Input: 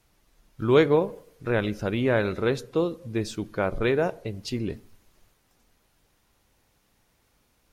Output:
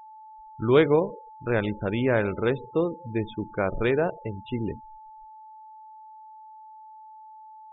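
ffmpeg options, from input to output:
-af "aresample=8000,aresample=44100,afftfilt=real='re*gte(hypot(re,im),0.0178)':imag='im*gte(hypot(re,im),0.0178)':win_size=1024:overlap=0.75,aeval=exprs='val(0)+0.00631*sin(2*PI*870*n/s)':c=same"

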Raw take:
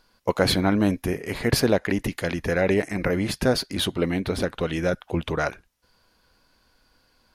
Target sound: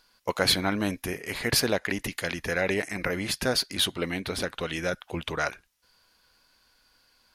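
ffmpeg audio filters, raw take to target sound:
-af "tiltshelf=f=970:g=-5.5,volume=-3dB"

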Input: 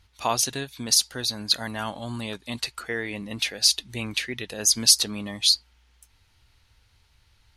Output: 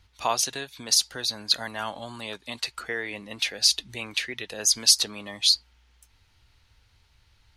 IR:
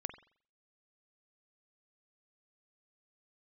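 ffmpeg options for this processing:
-filter_complex "[0:a]acrossover=split=390[a][b];[a]acompressor=threshold=-44dB:ratio=6[c];[c][b]amix=inputs=2:normalize=0,equalizer=f=11k:t=o:w=0.82:g=-4.5"

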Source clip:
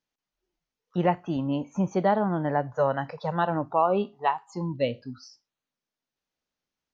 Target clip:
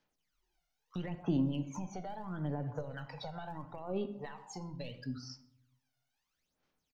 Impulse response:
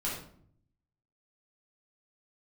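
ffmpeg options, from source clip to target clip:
-filter_complex "[0:a]lowshelf=f=400:g=-5.5,alimiter=limit=-19.5dB:level=0:latency=1:release=37,aeval=exprs='0.211*(cos(1*acos(clip(val(0)/0.211,-1,1)))-cos(1*PI/2))+0.015*(cos(2*acos(clip(val(0)/0.211,-1,1)))-cos(2*PI/2))':c=same,acompressor=threshold=-39dB:ratio=6,asplit=2[a][b];[b]adelay=130,highpass=300,lowpass=3.4k,asoftclip=type=hard:threshold=-37.5dB,volume=-24dB[c];[a][c]amix=inputs=2:normalize=0,aphaser=in_gain=1:out_gain=1:delay=1.4:decay=0.74:speed=0.75:type=sinusoidal,asplit=2[d][e];[1:a]atrim=start_sample=2205[f];[e][f]afir=irnorm=-1:irlink=0,volume=-13dB[g];[d][g]amix=inputs=2:normalize=0,acrossover=split=390|3000[h][i][j];[i]acompressor=threshold=-44dB:ratio=4[k];[h][k][j]amix=inputs=3:normalize=0,volume=-1dB"

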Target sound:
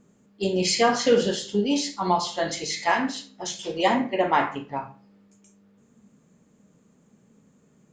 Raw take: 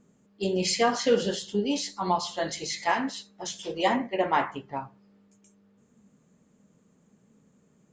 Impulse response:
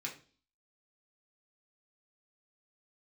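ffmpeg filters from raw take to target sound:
-filter_complex "[0:a]asplit=2[a][b];[1:a]atrim=start_sample=2205,adelay=36[c];[b][c]afir=irnorm=-1:irlink=0,volume=-8.5dB[d];[a][d]amix=inputs=2:normalize=0,volume=3dB"

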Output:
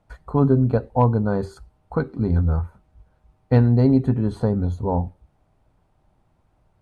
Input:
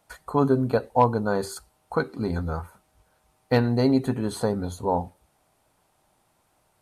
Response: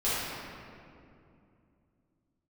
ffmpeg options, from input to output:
-af "aemphasis=mode=reproduction:type=riaa,volume=-2.5dB"

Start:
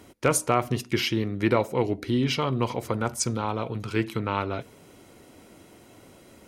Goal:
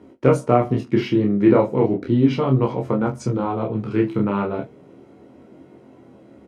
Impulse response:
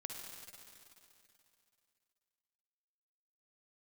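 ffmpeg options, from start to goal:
-filter_complex "[0:a]asplit=2[a][b];[b]aeval=exprs='sgn(val(0))*max(abs(val(0))-0.00562,0)':c=same,volume=-8dB[c];[a][c]amix=inputs=2:normalize=0,highpass=230,aemphasis=mode=reproduction:type=riaa,flanger=delay=22.5:depth=7:speed=0.35,tiltshelf=f=1.3k:g=4,asplit=2[d][e];[e]aecho=0:1:15|45:0.473|0.15[f];[d][f]amix=inputs=2:normalize=0,volume=1dB"

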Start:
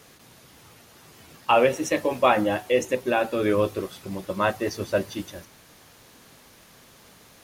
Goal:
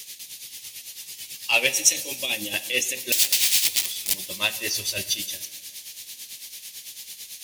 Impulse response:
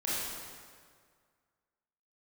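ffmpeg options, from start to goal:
-filter_complex "[0:a]asettb=1/sr,asplit=3[a][b][c];[a]atrim=end=1.764[d];[b]atrim=start=1.76:end=2.54,asetpts=PTS-STARTPTS,afade=t=in:d=0.004:c=qsin,afade=t=out:st=0.776:d=0.004:c=qsin,acrossover=split=500|3000[e][f][g];[f]acompressor=threshold=-41dB:ratio=2.5[h];[e][h][g]amix=inputs=3:normalize=0[i];[c]atrim=start=2.536[j];[d][i]acrossfade=d=0.004:c1=hsin:c2=qsin[k];[k][j]acrossfade=d=0.004:c1=qsin:c2=hsin,asplit=3[l][m][n];[l]afade=t=out:st=4.75:d=0.02[o];[m]asubboost=boost=4:cutoff=110,afade=t=in:st=4.75:d=0.02,afade=t=out:st=5.15:d=0.02[p];[n]afade=t=in:st=5.15:d=0.02[q];[o][p][q]amix=inputs=3:normalize=0,acontrast=84,asettb=1/sr,asplit=3[r][s][t];[r]atrim=end=3.124[u];[s]atrim=start=3.12:end=4.14,asetpts=PTS-STARTPTS,afade=t=in:d=0.004:c=qsin,afade=t=out:st=1.016:d=0.004:c=qsin,aeval=exprs='(mod(11.9*val(0)+1,2)-1)/11.9':c=same[v];[t]atrim=start=4.136[w];[u][v]acrossfade=d=0.004:c1=hsin:c2=qsin[x];[x][w]acrossfade=d=0.004:c1=qsin:c2=hsin,aexciter=amount=15.4:drive=5.3:freq=2.1k,acrusher=bits=7:mix=0:aa=0.000001,tremolo=f=9:d=0.69,asplit=2[y][z];[1:a]atrim=start_sample=2205[aa];[z][aa]afir=irnorm=-1:irlink=0,volume=-20.5dB[ab];[y][ab]amix=inputs=2:normalize=0,volume=-15.5dB"

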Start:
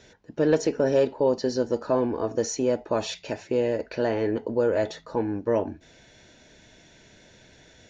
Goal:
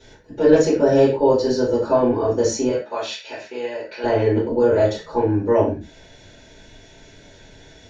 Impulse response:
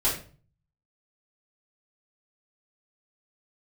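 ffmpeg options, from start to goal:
-filter_complex "[0:a]asettb=1/sr,asplit=3[a][b][c];[a]atrim=end=2.694[d];[b]atrim=start=2.69:end=4.04,asetpts=PTS-STARTPTS,afade=t=in:d=0.004:c=qsin,afade=t=out:st=1.346:d=0.004:c=qsin,bandpass=f=2.4k:t=q:w=0.62:csg=0[e];[c]atrim=start=4.036[f];[d][e]acrossfade=d=0.004:c1=hsin:c2=qsin[g];[g][f]acrossfade=d=0.004:c1=qsin:c2=hsin[h];[1:a]atrim=start_sample=2205,atrim=end_sample=6174[i];[h][i]afir=irnorm=-1:irlink=0,volume=-4.5dB"

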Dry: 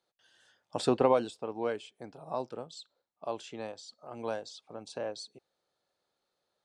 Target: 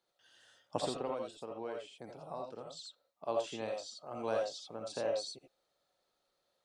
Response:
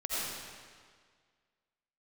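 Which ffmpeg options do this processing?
-filter_complex "[0:a]asettb=1/sr,asplit=3[a][b][c];[a]atrim=end=0.784[d];[b]atrim=start=0.78:end=3.28,asetpts=PTS-STARTPTS,afade=t=in:d=0.004:c=qsin,afade=t=out:st=2.496:d=0.004:c=qsin,acompressor=threshold=-45dB:ratio=2[e];[c]atrim=start=3.276[f];[d][e]acrossfade=d=0.004:c1=hsin:c2=qsin[g];[g][f]acrossfade=d=0.004:c1=qsin:c2=hsin[h];[1:a]atrim=start_sample=2205,atrim=end_sample=3969[i];[h][i]afir=irnorm=-1:irlink=0,volume=1.5dB"

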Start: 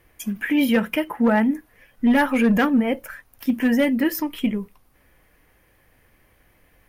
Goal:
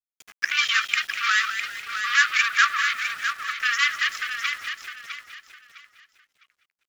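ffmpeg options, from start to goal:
-filter_complex "[0:a]aeval=exprs='0.299*(cos(1*acos(clip(val(0)/0.299,-1,1)))-cos(1*PI/2))+0.0422*(cos(7*acos(clip(val(0)/0.299,-1,1)))-cos(7*PI/2))':c=same,afftfilt=real='re*between(b*sr/4096,1100,7500)':imag='im*between(b*sr/4096,1100,7500)':win_size=4096:overlap=0.75,asplit=2[a][b];[b]asplit=5[c][d][e][f][g];[c]adelay=199,afreqshift=63,volume=-10dB[h];[d]adelay=398,afreqshift=126,volume=-16.2dB[i];[e]adelay=597,afreqshift=189,volume=-22.4dB[j];[f]adelay=796,afreqshift=252,volume=-28.6dB[k];[g]adelay=995,afreqshift=315,volume=-34.8dB[l];[h][i][j][k][l]amix=inputs=5:normalize=0[m];[a][m]amix=inputs=2:normalize=0,aeval=exprs='val(0)*gte(abs(val(0)),0.00447)':c=same,asplit=2[n][o];[o]aecho=0:1:657|1314|1971:0.398|0.107|0.029[p];[n][p]amix=inputs=2:normalize=0,volume=6dB"

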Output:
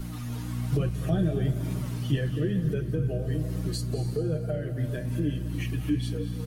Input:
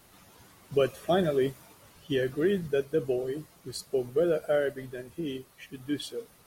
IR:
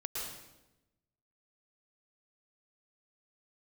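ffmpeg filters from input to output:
-filter_complex "[0:a]aecho=1:1:6.4:0.67,aeval=exprs='val(0)+0.0126*(sin(2*PI*60*n/s)+sin(2*PI*2*60*n/s)/2+sin(2*PI*3*60*n/s)/3+sin(2*PI*4*60*n/s)/4+sin(2*PI*5*60*n/s)/5)':c=same,acontrast=87,flanger=delay=4.9:depth=5.1:regen=41:speed=1.1:shape=triangular,acrossover=split=210[a][b];[b]acompressor=threshold=-39dB:ratio=10[c];[a][c]amix=inputs=2:normalize=0,flanger=delay=7.8:depth=2.9:regen=-66:speed=0.44:shape=triangular,asplit=2[d][e];[1:a]atrim=start_sample=2205,asetrate=24696,aresample=44100[f];[e][f]afir=irnorm=-1:irlink=0,volume=-12dB[g];[d][g]amix=inputs=2:normalize=0,volume=7.5dB"

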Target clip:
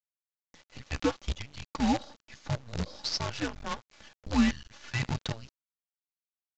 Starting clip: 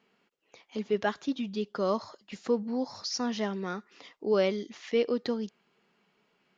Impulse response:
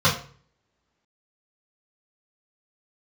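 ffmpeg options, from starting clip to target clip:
-af "highpass=400,aecho=1:1:3.4:0.77,afreqshift=-340,acrusher=bits=6:dc=4:mix=0:aa=0.000001,aresample=16000,aresample=44100"

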